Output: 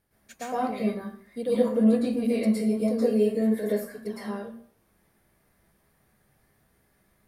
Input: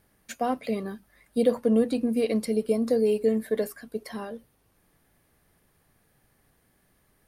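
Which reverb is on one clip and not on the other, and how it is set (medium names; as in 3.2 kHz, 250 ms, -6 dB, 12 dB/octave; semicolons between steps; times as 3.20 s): plate-style reverb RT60 0.51 s, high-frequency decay 0.7×, pre-delay 100 ms, DRR -10 dB; trim -10 dB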